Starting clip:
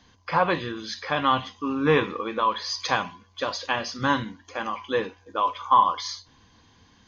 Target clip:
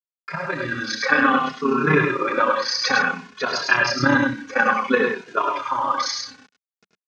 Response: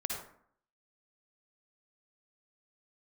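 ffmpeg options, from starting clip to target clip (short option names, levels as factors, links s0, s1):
-filter_complex "[0:a]agate=range=0.355:threshold=0.002:ratio=16:detection=peak,equalizer=f=3200:w=3.4:g=-14,aecho=1:1:7.4:0.86,alimiter=limit=0.15:level=0:latency=1:release=277,dynaudnorm=f=420:g=3:m=4.73,acrusher=bits=6:mix=0:aa=0.000001,tremolo=f=32:d=0.667,highpass=180,equalizer=f=190:t=q:w=4:g=5,equalizer=f=700:t=q:w=4:g=-3,equalizer=f=1000:t=q:w=4:g=-5,equalizer=f=1500:t=q:w=4:g=8,equalizer=f=2500:t=q:w=4:g=4,lowpass=f=6300:w=0.5412,lowpass=f=6300:w=1.3066,aecho=1:1:81|105:0.316|0.631,asplit=2[s0][s1];[s1]adelay=2.4,afreqshift=-0.58[s2];[s0][s2]amix=inputs=2:normalize=1,volume=1.12"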